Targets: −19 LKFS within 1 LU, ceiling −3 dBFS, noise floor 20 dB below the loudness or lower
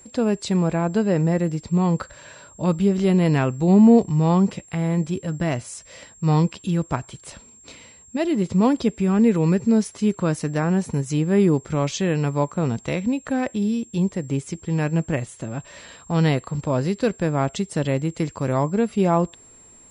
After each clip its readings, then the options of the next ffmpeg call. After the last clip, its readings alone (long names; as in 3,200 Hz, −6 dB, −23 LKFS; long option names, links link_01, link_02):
interfering tone 7,500 Hz; level of the tone −47 dBFS; integrated loudness −21.5 LKFS; sample peak −4.0 dBFS; target loudness −19.0 LKFS
→ -af "bandreject=frequency=7500:width=30"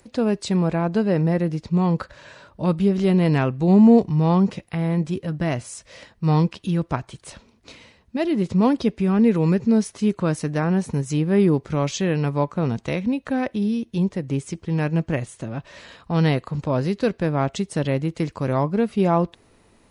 interfering tone none found; integrated loudness −21.5 LKFS; sample peak −4.0 dBFS; target loudness −19.0 LKFS
→ -af "volume=2.5dB,alimiter=limit=-3dB:level=0:latency=1"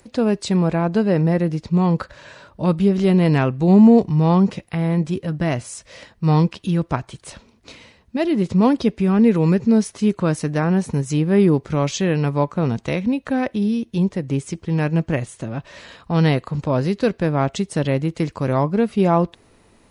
integrated loudness −19.0 LKFS; sample peak −3.0 dBFS; background noise floor −55 dBFS